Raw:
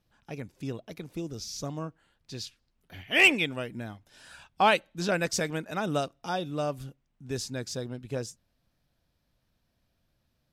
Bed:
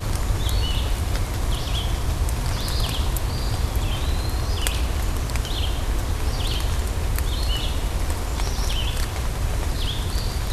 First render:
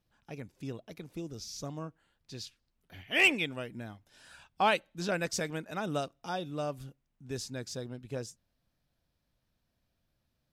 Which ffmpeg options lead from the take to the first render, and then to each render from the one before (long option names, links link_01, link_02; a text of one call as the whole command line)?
ffmpeg -i in.wav -af "volume=-4.5dB" out.wav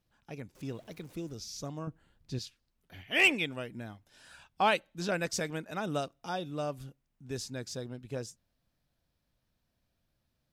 ffmpeg -i in.wav -filter_complex "[0:a]asettb=1/sr,asplit=3[link_01][link_02][link_03];[link_01]atrim=end=0.554[link_04];[link_02]atrim=start=0.55:end=1.34,asetpts=PTS-STARTPTS,afade=type=in:duration=0.004:curve=qsin,afade=type=out:start_time=0.786:duration=0.004:curve=qsin,aeval=exprs='val(0)+0.5*0.00178*sgn(val(0))':channel_layout=same[link_05];[link_03]atrim=start=1.336[link_06];[link_04][link_05]acrossfade=duration=0.004:curve1=hsin:curve2=qsin[link_07];[link_07][link_06]acrossfade=duration=0.004:curve1=qsin:curve2=hsin,asettb=1/sr,asplit=3[link_08][link_09][link_10];[link_08]atrim=end=1.874[link_11];[link_09]atrim=start=1.87:end=2.39,asetpts=PTS-STARTPTS,afade=type=in:duration=0.004:curve=qsin,afade=type=out:start_time=0.516:duration=0.004:curve=qsin,lowshelf=frequency=390:gain=11.5[link_12];[link_10]atrim=start=2.386[link_13];[link_11][link_12]acrossfade=duration=0.004:curve1=hsin:curve2=qsin[link_14];[link_14][link_13]acrossfade=duration=0.004:curve1=qsin:curve2=hsin" out.wav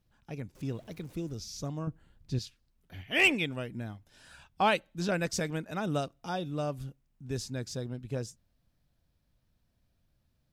ffmpeg -i in.wav -af "lowshelf=frequency=200:gain=8" out.wav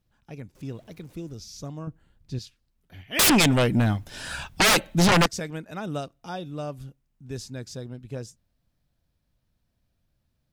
ffmpeg -i in.wav -filter_complex "[0:a]asettb=1/sr,asplit=3[link_01][link_02][link_03];[link_01]atrim=end=3.194[link_04];[link_02]atrim=start=3.19:end=5.26,asetpts=PTS-STARTPTS,afade=type=in:duration=0.004:curve=qsin,afade=type=out:start_time=2.066:duration=0.004:curve=qsin,aeval=exprs='0.188*sin(PI/2*6.31*val(0)/0.188)':channel_layout=same[link_05];[link_03]atrim=start=5.256[link_06];[link_04][link_05]acrossfade=duration=0.004:curve1=hsin:curve2=qsin[link_07];[link_07][link_06]acrossfade=duration=0.004:curve1=qsin:curve2=hsin" out.wav